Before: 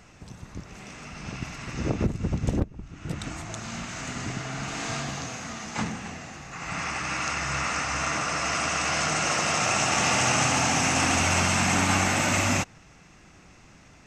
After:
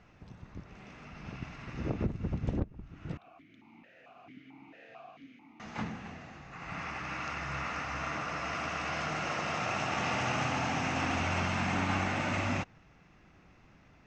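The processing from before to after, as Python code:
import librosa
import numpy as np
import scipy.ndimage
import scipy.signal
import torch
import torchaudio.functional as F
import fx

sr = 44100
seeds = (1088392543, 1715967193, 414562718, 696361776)

y = fx.air_absorb(x, sr, metres=200.0)
y = fx.vowel_held(y, sr, hz=4.5, at=(3.17, 5.6))
y = y * 10.0 ** (-6.5 / 20.0)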